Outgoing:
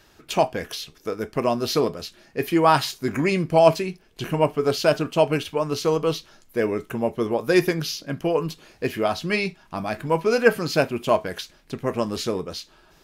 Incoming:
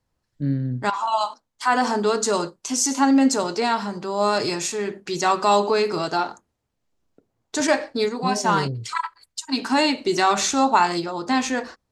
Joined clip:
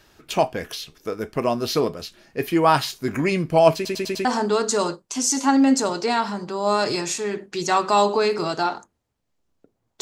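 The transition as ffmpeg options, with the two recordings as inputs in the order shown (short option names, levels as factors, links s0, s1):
-filter_complex "[0:a]apad=whole_dur=10.01,atrim=end=10.01,asplit=5[s0][s1][s2][s3][s4];[s0]atrim=end=3.852[s5];[s1]atrim=start=3.748:end=3.852[s6];[s2]atrim=start=3.748:end=3.852[s7];[s3]atrim=start=3.748:end=3.852[s8];[s4]atrim=start=3.748:end=3.852[s9];[1:a]atrim=start=1.788:end=7.55[s10];[s5][s6]acrossfade=d=0.004:c1=hsin:c2=hsin[s11];[s11][s7]acrossfade=d=0.004:c1=hsin:c2=hsin[s12];[s12][s8]acrossfade=d=0.004:c1=hsin:c2=hsin[s13];[s13][s9]acrossfade=d=0.004:c1=hsin:c2=hsin[s14];[s14][s10]acrossfade=d=0.004:c1=hsin:c2=hsin"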